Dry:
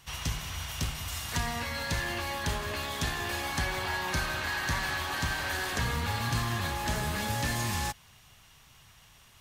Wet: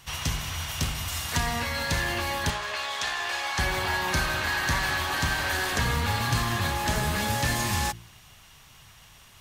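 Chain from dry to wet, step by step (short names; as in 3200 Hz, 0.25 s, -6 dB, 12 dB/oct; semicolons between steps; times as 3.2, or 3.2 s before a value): 2.5–3.59 three-band isolator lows -21 dB, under 530 Hz, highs -14 dB, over 7900 Hz; de-hum 57.24 Hz, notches 8; gain +5 dB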